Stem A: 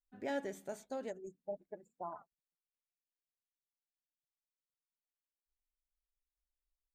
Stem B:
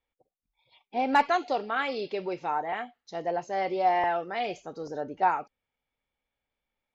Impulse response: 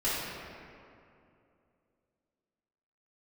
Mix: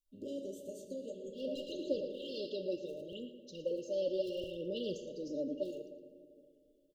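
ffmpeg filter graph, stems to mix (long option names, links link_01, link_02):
-filter_complex "[0:a]acompressor=threshold=-46dB:ratio=2.5,volume=0.5dB,asplit=4[link_01][link_02][link_03][link_04];[link_02]volume=-10dB[link_05];[link_03]volume=-12dB[link_06];[1:a]aphaser=in_gain=1:out_gain=1:delay=3.7:decay=0.6:speed=0.69:type=sinusoidal,adelay=400,volume=-6dB,asplit=3[link_07][link_08][link_09];[link_08]volume=-19.5dB[link_10];[link_09]volume=-13dB[link_11];[link_04]apad=whole_len=323874[link_12];[link_07][link_12]sidechaincompress=threshold=-54dB:ratio=8:attack=8.5:release=342[link_13];[2:a]atrim=start_sample=2205[link_14];[link_05][link_10]amix=inputs=2:normalize=0[link_15];[link_15][link_14]afir=irnorm=-1:irlink=0[link_16];[link_06][link_11]amix=inputs=2:normalize=0,aecho=0:1:114|228|342|456|570:1|0.34|0.116|0.0393|0.0134[link_17];[link_01][link_13][link_16][link_17]amix=inputs=4:normalize=0,afftfilt=real='re*(1-between(b*sr/4096,620,2700))':imag='im*(1-between(b*sr/4096,620,2700))':win_size=4096:overlap=0.75"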